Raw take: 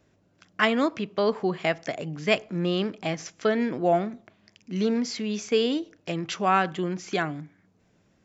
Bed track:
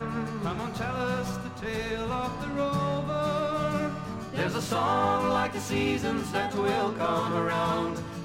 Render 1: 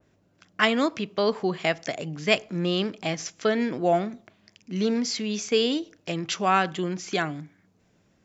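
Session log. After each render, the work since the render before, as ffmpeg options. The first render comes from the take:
ffmpeg -i in.wav -af "adynamicequalizer=threshold=0.00891:dfrequency=2800:dqfactor=0.7:tfrequency=2800:tqfactor=0.7:attack=5:release=100:ratio=0.375:range=3:mode=boostabove:tftype=highshelf" out.wav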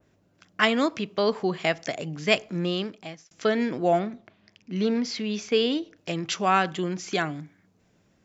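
ffmpeg -i in.wav -filter_complex "[0:a]asettb=1/sr,asplit=3[link_01][link_02][link_03];[link_01]atrim=end=3.994[link_04];[link_02]atrim=start=3.99:end=5.97,asetpts=PTS-STARTPTS,afade=type=in:duration=0.004:curve=qsin,afade=type=out:start_time=1.976:duration=0.004:curve=qsin,lowpass=4500[link_05];[link_03]atrim=start=5.966[link_06];[link_04][link_05]acrossfade=duration=0.004:curve1=hsin:curve2=qsin[link_07];[link_07][link_06]acrossfade=duration=0.004:curve1=qsin:curve2=hsin,asplit=2[link_08][link_09];[link_08]atrim=end=3.31,asetpts=PTS-STARTPTS,afade=type=out:start_time=2.56:duration=0.75[link_10];[link_09]atrim=start=3.31,asetpts=PTS-STARTPTS,afade=type=in:duration=0.004:curve=hsin[link_11];[link_10][link_11]concat=n=2:v=0:a=1" out.wav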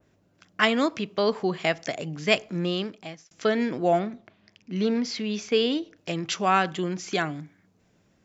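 ffmpeg -i in.wav -af anull out.wav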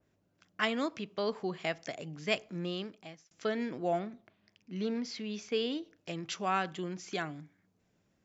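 ffmpeg -i in.wav -af "volume=-9.5dB" out.wav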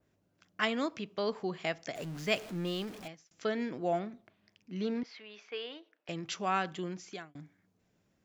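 ffmpeg -i in.wav -filter_complex "[0:a]asettb=1/sr,asplit=3[link_01][link_02][link_03];[link_01]atrim=end=1.954[link_04];[link_02]atrim=start=1.95:end=3.08,asetpts=PTS-STARTPTS,afade=type=in:duration=0.004:curve=qsin,afade=type=out:start_time=1.126:duration=0.004:curve=qsin,aeval=exprs='val(0)+0.5*0.00708*sgn(val(0))':channel_layout=same[link_05];[link_03]atrim=start=3.076[link_06];[link_04][link_05]acrossfade=duration=0.004:curve1=hsin:curve2=qsin[link_07];[link_07][link_06]acrossfade=duration=0.004:curve1=qsin:curve2=hsin,asettb=1/sr,asplit=3[link_08][link_09][link_10];[link_08]atrim=end=5.034[link_11];[link_09]atrim=start=5.03:end=6.09,asetpts=PTS-STARTPTS,afade=type=in:duration=0.004:curve=qsin,afade=type=out:start_time=1.056:duration=0.004:curve=qsin,highpass=710,lowpass=2600[link_12];[link_10]atrim=start=6.086[link_13];[link_11][link_12]acrossfade=duration=0.004:curve1=hsin:curve2=qsin[link_14];[link_14][link_13]acrossfade=duration=0.004:curve1=qsin:curve2=hsin,asplit=2[link_15][link_16];[link_15]atrim=end=7.35,asetpts=PTS-STARTPTS,afade=type=out:start_time=6.9:duration=0.45[link_17];[link_16]atrim=start=7.35,asetpts=PTS-STARTPTS,afade=type=in:duration=0.004:curve=hsin[link_18];[link_17][link_18]concat=n=2:v=0:a=1" out.wav

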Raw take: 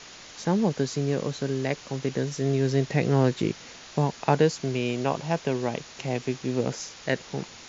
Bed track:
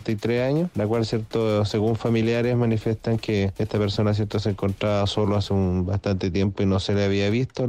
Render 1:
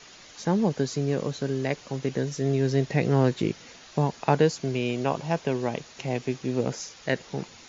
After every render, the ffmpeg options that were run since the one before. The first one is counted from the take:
ffmpeg -i in.wav -af "afftdn=noise_reduction=6:noise_floor=-46" out.wav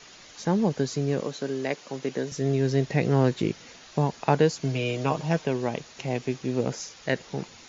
ffmpeg -i in.wav -filter_complex "[0:a]asettb=1/sr,asplit=3[link_01][link_02][link_03];[link_01]atrim=end=1.204[link_04];[link_02]atrim=start=1.2:end=2.32,asetpts=PTS-STARTPTS,afade=type=in:duration=0.004:curve=qsin,afade=type=out:start_time=1.116:duration=0.004:curve=qsin,highpass=220[link_05];[link_03]atrim=start=2.316[link_06];[link_04][link_05]acrossfade=duration=0.004:curve1=hsin:curve2=qsin[link_07];[link_07][link_06]acrossfade=duration=0.004:curve1=qsin:curve2=hsin,asettb=1/sr,asplit=3[link_08][link_09][link_10];[link_08]atrim=end=4.614[link_11];[link_09]atrim=start=4.61:end=5.45,asetpts=PTS-STARTPTS,afade=type=in:duration=0.004:curve=qsin,afade=type=out:start_time=0.836:duration=0.004:curve=qsin,aecho=1:1:6.5:0.65,atrim=end_sample=37044[link_12];[link_10]atrim=start=5.446[link_13];[link_11][link_12]acrossfade=duration=0.004:curve1=hsin:curve2=qsin[link_14];[link_14][link_13]acrossfade=duration=0.004:curve1=qsin:curve2=hsin" out.wav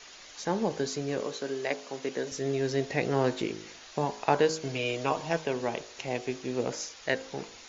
ffmpeg -i in.wav -af "equalizer=frequency=150:width=0.86:gain=-11,bandreject=frequency=52.98:width_type=h:width=4,bandreject=frequency=105.96:width_type=h:width=4,bandreject=frequency=158.94:width_type=h:width=4,bandreject=frequency=211.92:width_type=h:width=4,bandreject=frequency=264.9:width_type=h:width=4,bandreject=frequency=317.88:width_type=h:width=4,bandreject=frequency=370.86:width_type=h:width=4,bandreject=frequency=423.84:width_type=h:width=4,bandreject=frequency=476.82:width_type=h:width=4,bandreject=frequency=529.8:width_type=h:width=4,bandreject=frequency=582.78:width_type=h:width=4,bandreject=frequency=635.76:width_type=h:width=4,bandreject=frequency=688.74:width_type=h:width=4,bandreject=frequency=741.72:width_type=h:width=4,bandreject=frequency=794.7:width_type=h:width=4,bandreject=frequency=847.68:width_type=h:width=4,bandreject=frequency=900.66:width_type=h:width=4,bandreject=frequency=953.64:width_type=h:width=4,bandreject=frequency=1006.62:width_type=h:width=4,bandreject=frequency=1059.6:width_type=h:width=4,bandreject=frequency=1112.58:width_type=h:width=4,bandreject=frequency=1165.56:width_type=h:width=4,bandreject=frequency=1218.54:width_type=h:width=4,bandreject=frequency=1271.52:width_type=h:width=4,bandreject=frequency=1324.5:width_type=h:width=4,bandreject=frequency=1377.48:width_type=h:width=4,bandreject=frequency=1430.46:width_type=h:width=4,bandreject=frequency=1483.44:width_type=h:width=4,bandreject=frequency=1536.42:width_type=h:width=4,bandreject=frequency=1589.4:width_type=h:width=4" out.wav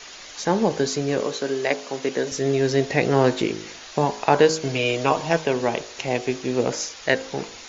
ffmpeg -i in.wav -af "volume=8.5dB,alimiter=limit=-3dB:level=0:latency=1" out.wav

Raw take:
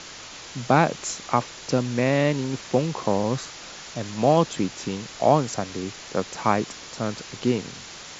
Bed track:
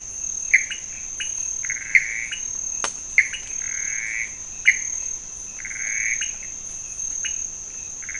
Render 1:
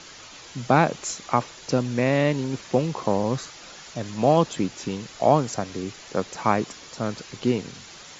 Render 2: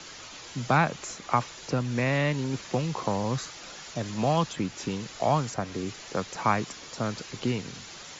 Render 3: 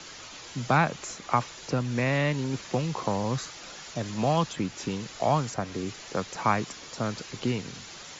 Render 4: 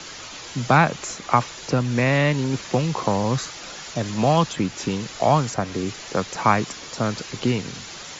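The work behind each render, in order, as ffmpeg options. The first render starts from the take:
ffmpeg -i in.wav -af "afftdn=noise_reduction=6:noise_floor=-41" out.wav
ffmpeg -i in.wav -filter_complex "[0:a]acrossover=split=180|860|2700[link_01][link_02][link_03][link_04];[link_02]acompressor=threshold=-30dB:ratio=6[link_05];[link_04]alimiter=level_in=5dB:limit=-24dB:level=0:latency=1:release=345,volume=-5dB[link_06];[link_01][link_05][link_03][link_06]amix=inputs=4:normalize=0" out.wav
ffmpeg -i in.wav -af anull out.wav
ffmpeg -i in.wav -af "volume=6.5dB" out.wav

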